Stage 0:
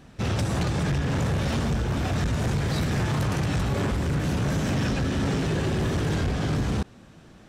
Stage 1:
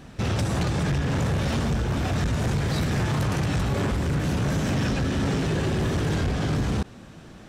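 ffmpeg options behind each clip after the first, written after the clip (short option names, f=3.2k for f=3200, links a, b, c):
-af "alimiter=level_in=1.5dB:limit=-24dB:level=0:latency=1:release=34,volume=-1.5dB,volume=5dB"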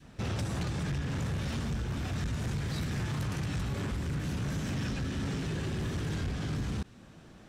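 -af "adynamicequalizer=threshold=0.00794:dfrequency=630:dqfactor=0.79:tfrequency=630:tqfactor=0.79:attack=5:release=100:ratio=0.375:range=3:mode=cutabove:tftype=bell,volume=-8dB"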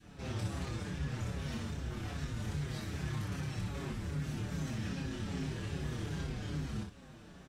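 -filter_complex "[0:a]alimiter=level_in=9.5dB:limit=-24dB:level=0:latency=1,volume=-9.5dB,aecho=1:1:27|60:0.708|0.631,asplit=2[a][b];[b]adelay=6.2,afreqshift=-2.5[c];[a][c]amix=inputs=2:normalize=1"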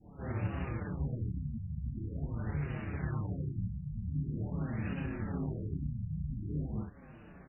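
-af "aeval=exprs='0.0531*(cos(1*acos(clip(val(0)/0.0531,-1,1)))-cos(1*PI/2))+0.00841*(cos(3*acos(clip(val(0)/0.0531,-1,1)))-cos(3*PI/2))':c=same,asoftclip=type=tanh:threshold=-28.5dB,afftfilt=real='re*lt(b*sr/1024,210*pow(3000/210,0.5+0.5*sin(2*PI*0.45*pts/sr)))':imag='im*lt(b*sr/1024,210*pow(3000/210,0.5+0.5*sin(2*PI*0.45*pts/sr)))':win_size=1024:overlap=0.75,volume=6.5dB"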